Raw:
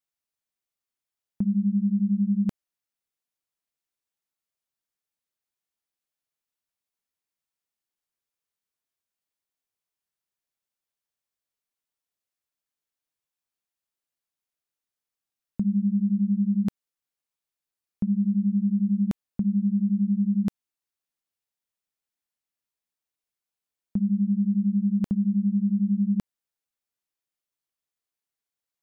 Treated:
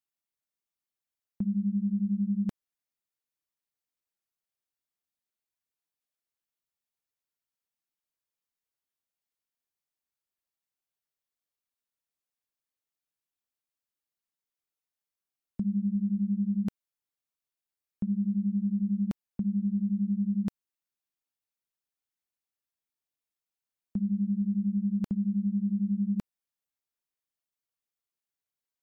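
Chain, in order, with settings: trim -5 dB; Nellymoser 88 kbps 44.1 kHz

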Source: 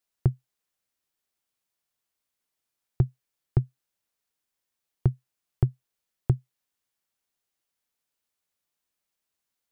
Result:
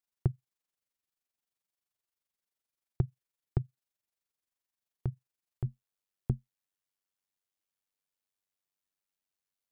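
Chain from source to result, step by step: AM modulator 23 Hz, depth 50%, from 5.65 s modulator 96 Hz; trim -5 dB

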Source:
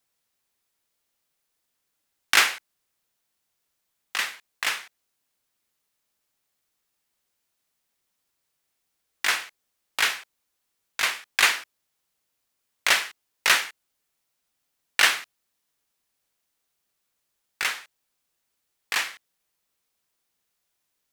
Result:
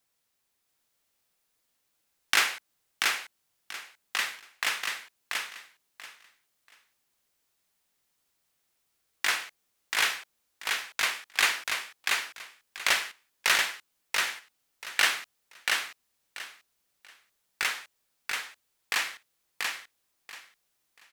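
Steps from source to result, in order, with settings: compression 1.5:1, threshold -28 dBFS, peak gain reduction 6 dB; feedback delay 685 ms, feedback 21%, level -3.5 dB

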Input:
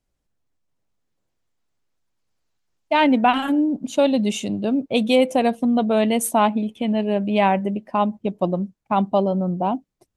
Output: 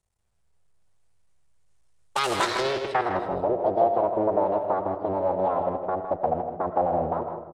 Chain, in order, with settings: cycle switcher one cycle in 3, muted; peaking EQ 200 Hz -14.5 dB 0.67 oct; compression 2:1, threshold -26 dBFS, peak gain reduction 7.5 dB; low-pass sweep 6.6 kHz -> 480 Hz, 3.20–4.58 s; speed mistake 33 rpm record played at 45 rpm; delay 159 ms -8 dB; on a send at -9.5 dB: reverberation RT60 0.85 s, pre-delay 60 ms; on the sum: AAC 64 kbps 48 kHz

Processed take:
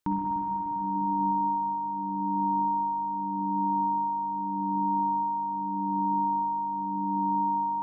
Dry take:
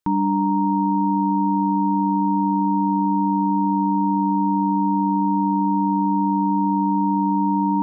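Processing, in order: peak limiter -20.5 dBFS, peak gain reduction 8.5 dB; tremolo 0.83 Hz, depth 77%; reverberation RT60 5.8 s, pre-delay 50 ms, DRR -1 dB; trim +1 dB

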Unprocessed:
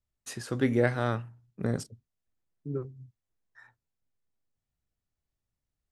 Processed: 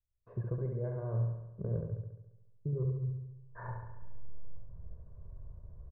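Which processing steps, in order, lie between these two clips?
recorder AGC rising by 24 dB/s; comb 1.9 ms, depth 98%; gate -51 dBFS, range -12 dB; low-pass 1 kHz 24 dB/octave; reverse; compression 10:1, threshold -33 dBFS, peak gain reduction 17 dB; reverse; bass shelf 270 Hz +10 dB; on a send: flutter echo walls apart 11.9 m, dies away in 0.97 s; on the sum: trim -6.5 dB

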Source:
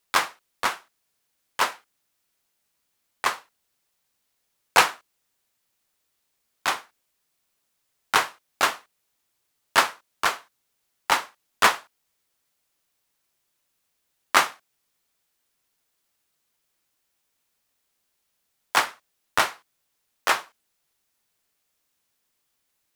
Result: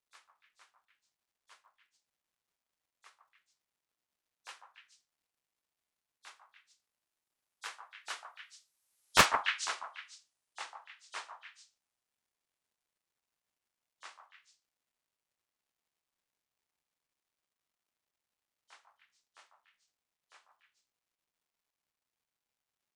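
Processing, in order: knee-point frequency compression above 3.1 kHz 1.5:1; Doppler pass-by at 9.16 s, 21 m/s, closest 3.5 m; high-pass 310 Hz 24 dB/octave; tilt EQ +3 dB/octave; crackle 440 per s -68 dBFS; on a send: repeats whose band climbs or falls 145 ms, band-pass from 870 Hz, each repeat 1.4 oct, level -2.5 dB; on the sum: loudspeaker Doppler distortion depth 0.46 ms; trim -6 dB

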